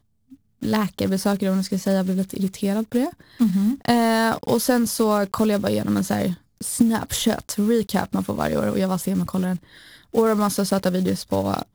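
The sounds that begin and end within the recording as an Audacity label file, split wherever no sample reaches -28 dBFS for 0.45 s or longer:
0.630000	9.560000	sound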